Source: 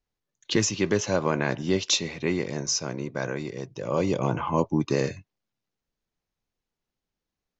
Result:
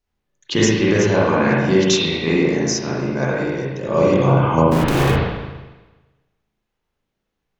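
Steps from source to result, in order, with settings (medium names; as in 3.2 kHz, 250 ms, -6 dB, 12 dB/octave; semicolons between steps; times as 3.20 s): 4.67–5.16 s: Schmitt trigger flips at -39.5 dBFS; spring tank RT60 1.2 s, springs 37/60 ms, chirp 65 ms, DRR -6.5 dB; trim +2.5 dB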